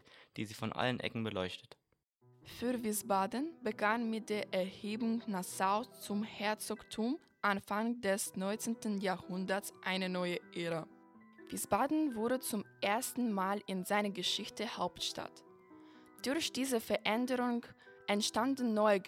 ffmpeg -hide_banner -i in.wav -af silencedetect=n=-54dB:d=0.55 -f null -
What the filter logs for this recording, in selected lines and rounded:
silence_start: 1.73
silence_end: 2.43 | silence_duration: 0.70